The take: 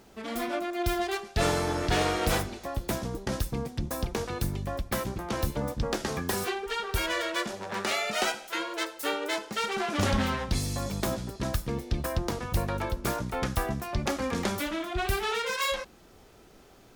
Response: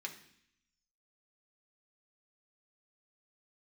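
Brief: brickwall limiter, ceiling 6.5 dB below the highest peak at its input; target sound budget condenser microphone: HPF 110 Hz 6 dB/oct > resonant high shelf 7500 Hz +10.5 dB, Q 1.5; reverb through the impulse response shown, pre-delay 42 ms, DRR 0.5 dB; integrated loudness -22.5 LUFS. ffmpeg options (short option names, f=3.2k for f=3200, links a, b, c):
-filter_complex "[0:a]alimiter=limit=-20.5dB:level=0:latency=1,asplit=2[a][b];[1:a]atrim=start_sample=2205,adelay=42[c];[b][c]afir=irnorm=-1:irlink=0,volume=0.5dB[d];[a][d]amix=inputs=2:normalize=0,highpass=f=110:p=1,highshelf=f=7.5k:t=q:w=1.5:g=10.5,volume=6.5dB"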